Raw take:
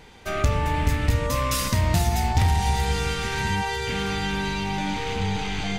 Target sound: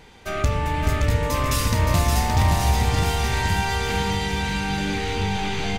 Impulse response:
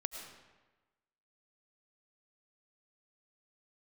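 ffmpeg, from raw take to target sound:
-af "aecho=1:1:570|1083|1545|1960|2334:0.631|0.398|0.251|0.158|0.1"

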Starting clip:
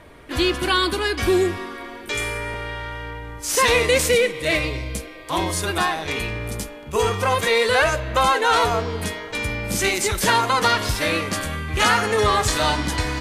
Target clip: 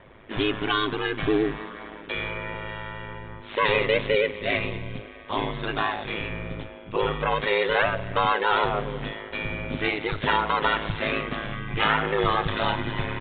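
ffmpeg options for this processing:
ffmpeg -i in.wav -af "aresample=8000,aresample=44100,aeval=exprs='val(0)*sin(2*PI*53*n/s)':channel_layout=same,volume=-1.5dB" out.wav

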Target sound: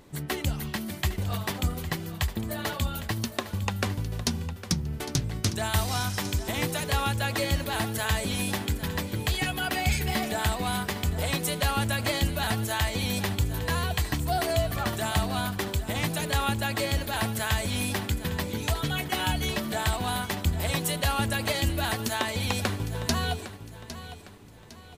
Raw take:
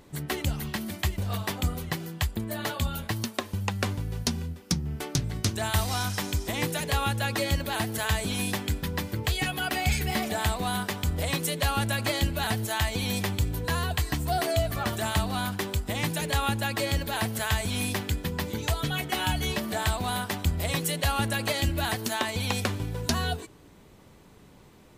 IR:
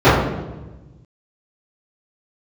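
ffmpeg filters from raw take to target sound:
-af "aecho=1:1:807|1614|2421|3228:0.211|0.0803|0.0305|0.0116"

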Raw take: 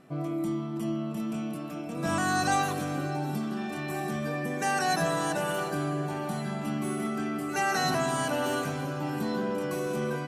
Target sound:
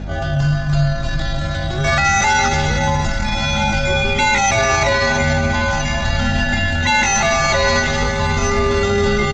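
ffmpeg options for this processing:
ffmpeg -i in.wav -filter_complex "[0:a]highpass=frequency=350:poles=1,equalizer=frequency=530:width=0.42:gain=-4.5,acrossover=split=680|1200[link_01][link_02][link_03];[link_01]acompressor=mode=upward:threshold=-46dB:ratio=2.5[link_04];[link_04][link_02][link_03]amix=inputs=3:normalize=0,asoftclip=type=hard:threshold=-26.5dB,afreqshift=-240,asetrate=70004,aresample=44100,atempo=0.629961,aeval=exprs='val(0)+0.00501*(sin(2*PI*50*n/s)+sin(2*PI*2*50*n/s)/2+sin(2*PI*3*50*n/s)/3+sin(2*PI*4*50*n/s)/4+sin(2*PI*5*50*n/s)/5)':channel_layout=same,atempo=1.1,aecho=1:1:295:0.224,aresample=16000,aresample=44100,alimiter=level_in=26.5dB:limit=-1dB:release=50:level=0:latency=1,volume=-5.5dB" out.wav

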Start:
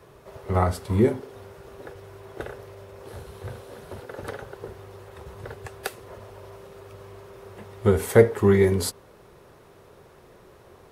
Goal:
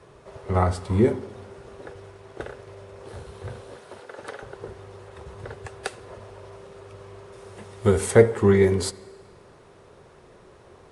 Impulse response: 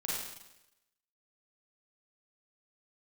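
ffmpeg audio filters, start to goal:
-filter_complex "[0:a]asettb=1/sr,asplit=3[link_01][link_02][link_03];[link_01]atrim=end=2.114[link_04];[link_02]atrim=start=2.11:end=2.67,asetpts=PTS-STARTPTS,afade=type=in:duration=0.004:curve=qsin,afade=type=out:start_time=0.556:duration=0.004:curve=qsin,aeval=exprs='sgn(val(0))*max(abs(val(0))-0.00237,0)':channel_layout=same[link_05];[link_03]atrim=start=2.666[link_06];[link_04][link_05]acrossfade=duration=0.004:curve1=hsin:curve2=qsin[link_07];[link_07][link_06]acrossfade=duration=0.004:curve1=qsin:curve2=hsin,asettb=1/sr,asplit=3[link_08][link_09][link_10];[link_08]atrim=end=3.764[link_11];[link_09]atrim=start=3.76:end=4.43,asetpts=PTS-STARTPTS,afade=type=in:duration=0.004:curve=qsin,afade=type=out:start_time=0.666:duration=0.004:curve=qsin,highpass=frequency=520:poles=1[link_12];[link_10]atrim=start=4.426[link_13];[link_11][link_12]acrossfade=duration=0.004:curve1=hsin:curve2=qsin[link_14];[link_14][link_13]acrossfade=duration=0.004:curve1=qsin:curve2=hsin,asettb=1/sr,asplit=3[link_15][link_16][link_17];[link_15]atrim=end=7.324[link_18];[link_16]atrim=start=7.32:end=8.11,asetpts=PTS-STARTPTS,afade=type=in:duration=0.004:curve=qsin,afade=type=out:start_time=0.786:duration=0.004:curve=qsin,aemphasis=mode=production:type=cd[link_19];[link_17]atrim=start=8.106[link_20];[link_18][link_19]acrossfade=duration=0.004:curve1=hsin:curve2=qsin[link_21];[link_21][link_20]acrossfade=duration=0.004:curve1=qsin:curve2=hsin,asplit=2[link_22][link_23];[1:a]atrim=start_sample=2205,asetrate=26019,aresample=44100,highshelf=frequency=5400:gain=-10.5[link_24];[link_23][link_24]afir=irnorm=-1:irlink=0,volume=-25dB[link_25];[link_22][link_25]amix=inputs=2:normalize=0,aresample=22050,aresample=44100"

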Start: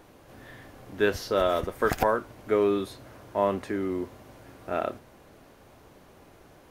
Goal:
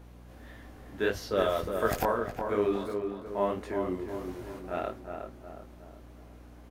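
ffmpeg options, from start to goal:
ffmpeg -i in.wav -filter_complex "[0:a]asettb=1/sr,asplit=3[link_01][link_02][link_03];[link_01]atrim=end=1.414[link_04];[link_02]atrim=start=1.41:end=2.03,asetpts=PTS-STARTPTS,afade=type=in:duration=0.004:curve=qsin,afade=type=out:start_time=0.616:duration=0.004:curve=qsin,highshelf=frequency=6000:gain=6.5[link_05];[link_03]atrim=start=2.026[link_06];[link_04][link_05]acrossfade=duration=0.004:curve1=hsin:curve2=qsin[link_07];[link_07][link_06]acrossfade=duration=0.004:curve1=qsin:curve2=hsin,asettb=1/sr,asplit=3[link_08][link_09][link_10];[link_08]atrim=end=4.084[link_11];[link_09]atrim=start=4.08:end=4.59,asetpts=PTS-STARTPTS,afade=type=in:duration=0.004:curve=qsin,afade=type=out:start_time=0.506:duration=0.004:curve=qsin,acontrast=89[link_12];[link_10]atrim=start=4.586[link_13];[link_11][link_12]acrossfade=duration=0.004:curve1=hsin:curve2=qsin[link_14];[link_14][link_13]acrossfade=duration=0.004:curve1=qsin:curve2=hsin,flanger=delay=17.5:depth=7.3:speed=1.6,aeval=exprs='val(0)+0.00398*(sin(2*PI*60*n/s)+sin(2*PI*2*60*n/s)/2+sin(2*PI*3*60*n/s)/3+sin(2*PI*4*60*n/s)/4+sin(2*PI*5*60*n/s)/5)':channel_layout=same,asettb=1/sr,asplit=3[link_15][link_16][link_17];[link_15]atrim=end=2.734[link_18];[link_16]atrim=start=2.73:end=3.26,asetpts=PTS-STARTPTS,afade=type=in:duration=0.004:curve=qsin,afade=type=out:start_time=0.526:duration=0.004:curve=qsin,aeval=exprs='sgn(val(0))*max(abs(val(0))-0.00531,0)':channel_layout=same[link_19];[link_17]atrim=start=3.256[link_20];[link_18][link_19]acrossfade=duration=0.004:curve1=hsin:curve2=qsin[link_21];[link_21][link_20]acrossfade=duration=0.004:curve1=qsin:curve2=hsin,asplit=2[link_22][link_23];[link_23]adelay=363,lowpass=frequency=1700:poles=1,volume=-5.5dB,asplit=2[link_24][link_25];[link_25]adelay=363,lowpass=frequency=1700:poles=1,volume=0.46,asplit=2[link_26][link_27];[link_27]adelay=363,lowpass=frequency=1700:poles=1,volume=0.46,asplit=2[link_28][link_29];[link_29]adelay=363,lowpass=frequency=1700:poles=1,volume=0.46,asplit=2[link_30][link_31];[link_31]adelay=363,lowpass=frequency=1700:poles=1,volume=0.46,asplit=2[link_32][link_33];[link_33]adelay=363,lowpass=frequency=1700:poles=1,volume=0.46[link_34];[link_22][link_24][link_26][link_28][link_30][link_32][link_34]amix=inputs=7:normalize=0,volume=-1.5dB" out.wav

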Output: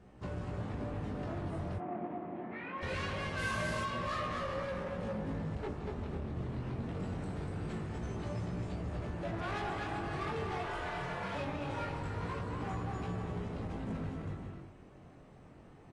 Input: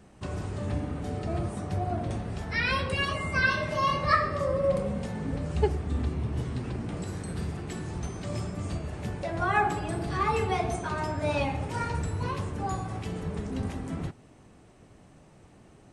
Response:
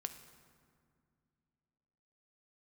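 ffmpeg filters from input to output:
-filter_complex "[0:a]asoftclip=type=tanh:threshold=-25dB,aemphasis=mode=reproduction:type=75kf,aecho=1:1:240|396|497.4|563.3|606.2:0.631|0.398|0.251|0.158|0.1,asettb=1/sr,asplit=3[link_01][link_02][link_03];[link_01]atrim=end=10.634[link_04];[link_02]atrim=start=10.63:end=11.35,asetpts=PTS-STARTPTS,afade=type=in:duration=0.004:curve=qsin,afade=type=out:start_time=0.716:duration=0.004:curve=qsin,aeval=exprs='val(0)*sin(2*PI*790*n/s)':channel_layout=same[link_05];[link_03]atrim=start=11.346[link_06];[link_04][link_05]acrossfade=duration=0.004:curve1=hsin:curve2=qsin[link_07];[link_07][link_06]acrossfade=duration=0.004:curve1=qsin:curve2=hsin,acompressor=threshold=-29dB:ratio=3,asoftclip=type=hard:threshold=-32dB,asplit=3[link_08][link_09][link_10];[link_08]afade=type=out:start_time=3.38:duration=0.02[link_11];[link_09]aeval=exprs='0.0251*(cos(1*acos(clip(val(0)/0.0251,-1,1)))-cos(1*PI/2))+0.00398*(cos(3*acos(clip(val(0)/0.0251,-1,1)))-cos(3*PI/2))+0.00562*(cos(7*acos(clip(val(0)/0.0251,-1,1)))-cos(7*PI/2))':channel_layout=same,afade=type=in:start_time=3.38:duration=0.02,afade=type=out:start_time=3.82:duration=0.02[link_12];[link_10]afade=type=in:start_time=3.82:duration=0.02[link_13];[link_11][link_12][link_13]amix=inputs=3:normalize=0,flanger=delay=16.5:depth=6:speed=0.23,asettb=1/sr,asplit=3[link_14][link_15][link_16];[link_14]atrim=end=1.784[link_17];[link_15]atrim=start=1.78:end=2.83,asetpts=PTS-STARTPTS,afade=type=in:duration=0.004:curve=qsin,afade=type=out:start_time=1.046:duration=0.004:curve=qsin,highpass=frequency=180:width=0.5412,highpass=frequency=180:width=1.3066,equalizer=frequency=320:width_type=q:width=4:gain=5,equalizer=frequency=470:width_type=q:width=4:gain=-5,equalizer=frequency=1500:width_type=q:width=4:gain=-8,lowpass=frequency=2200:width=0.5412,lowpass=frequency=2200:width=1.3066[link_18];[link_16]atrim=start=2.826[link_19];[link_17][link_18]acrossfade=duration=0.004:curve1=hsin:curve2=qsin[link_20];[link_20][link_19]acrossfade=duration=0.004:curve1=qsin:curve2=hsin" -ar 24000 -c:a aac -b:a 32k

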